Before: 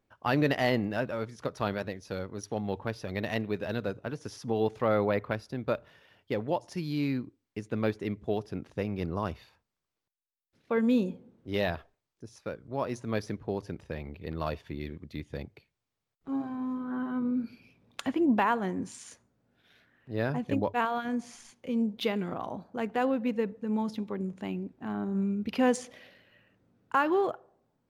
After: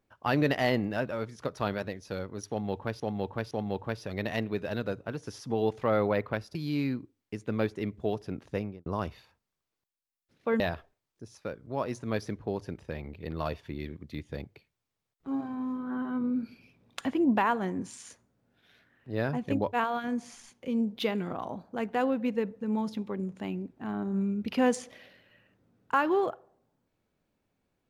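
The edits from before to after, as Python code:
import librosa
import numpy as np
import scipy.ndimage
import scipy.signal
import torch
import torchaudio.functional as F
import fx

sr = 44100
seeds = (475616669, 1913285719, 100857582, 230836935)

y = fx.studio_fade_out(x, sr, start_s=8.8, length_s=0.3)
y = fx.edit(y, sr, fx.repeat(start_s=2.49, length_s=0.51, count=3),
    fx.cut(start_s=5.53, length_s=1.26),
    fx.cut(start_s=10.84, length_s=0.77), tone=tone)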